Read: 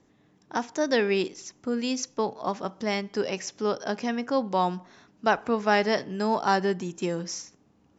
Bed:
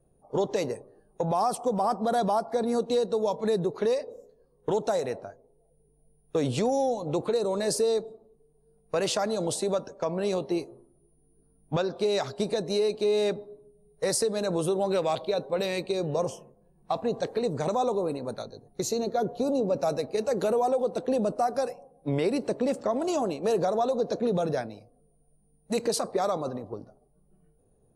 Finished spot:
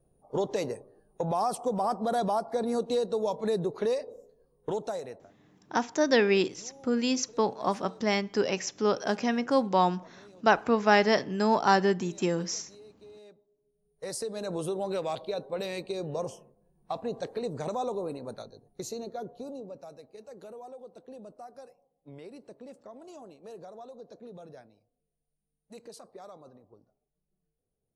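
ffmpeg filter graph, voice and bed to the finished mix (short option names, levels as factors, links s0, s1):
-filter_complex "[0:a]adelay=5200,volume=1.12[s0];[1:a]volume=8.41,afade=t=out:st=4.46:d=0.99:silence=0.0630957,afade=t=in:st=13.54:d=1.01:silence=0.0891251,afade=t=out:st=18.34:d=1.54:silence=0.188365[s1];[s0][s1]amix=inputs=2:normalize=0"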